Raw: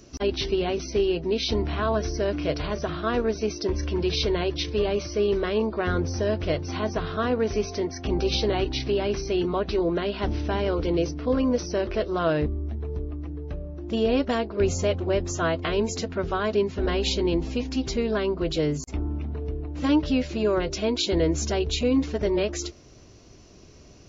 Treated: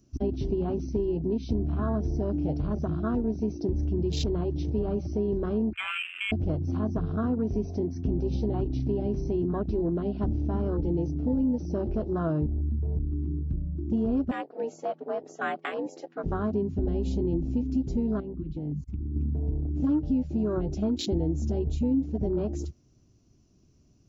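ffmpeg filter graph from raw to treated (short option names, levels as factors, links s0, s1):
-filter_complex "[0:a]asettb=1/sr,asplit=3[s0][s1][s2];[s0]atrim=end=5.734[s3];[s1]atrim=start=5.73:end=6.32,asetpts=PTS-STARTPTS,afade=t=in:d=0.004:c=qsin,afade=t=out:st=0.586:d=0.004:c=qsin,highpass=97,lowpass=f=2400:t=q:w=0.5098,lowpass=f=2400:t=q:w=0.6013,lowpass=f=2400:t=q:w=0.9,lowpass=f=2400:t=q:w=2.563,afreqshift=-2800[s4];[s2]atrim=start=6.316[s5];[s3][s4]acrossfade=d=0.004:c1=hsin:c2=qsin[s6];[s6][s5]acrossfade=d=0.004:c1=qsin:c2=hsin,asettb=1/sr,asplit=3[s7][s8][s9];[s7]atrim=end=14.314[s10];[s8]atrim=start=14.31:end=16.26,asetpts=PTS-STARTPTS,afade=t=in:d=0.004:c=qsin,afade=t=out:st=1.946:d=0.004:c=qsin,equalizer=f=1800:t=o:w=0.42:g=7.5,afreqshift=73,highpass=510,lowpass=5400[s11];[s9]atrim=start=16.256[s12];[s10][s11]acrossfade=d=0.004:c1=hsin:c2=qsin[s13];[s13][s12]acrossfade=d=0.004:c1=qsin:c2=hsin,asettb=1/sr,asplit=3[s14][s15][s16];[s14]atrim=end=18.204[s17];[s15]atrim=start=18.2:end=19.16,asetpts=PTS-STARTPTS,afade=t=in:d=0.004:c=qsin,afade=t=out:st=0.956:d=0.004:c=qsin,equalizer=f=690:t=o:w=0.47:g=-12,acompressor=threshold=0.0224:ratio=8:attack=3.2:release=140:knee=1:detection=peak,lowpass=3300[s18];[s16]atrim=start=19.156[s19];[s17][s18]acrossfade=d=0.004:c1=hsin:c2=qsin[s20];[s20][s19]acrossfade=d=0.004:c1=qsin:c2=hsin,afwtdn=0.0447,equalizer=f=125:t=o:w=1:g=4,equalizer=f=250:t=o:w=1:g=4,equalizer=f=500:t=o:w=1:g=-9,equalizer=f=1000:t=o:w=1:g=-5,equalizer=f=2000:t=o:w=1:g=-9,equalizer=f=4000:t=o:w=1:g=-7,acompressor=threshold=0.0355:ratio=3,volume=1.58"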